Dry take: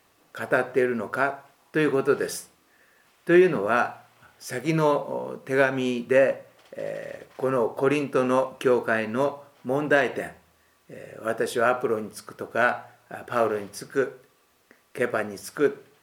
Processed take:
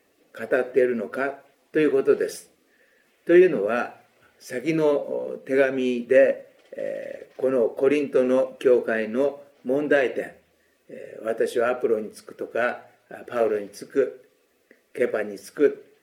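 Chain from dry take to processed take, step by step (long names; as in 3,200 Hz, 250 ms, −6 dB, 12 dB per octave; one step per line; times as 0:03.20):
spectral magnitudes quantised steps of 15 dB
octave-band graphic EQ 125/250/500/1,000/2,000 Hz −6/+6/+9/−9/+6 dB
level −4 dB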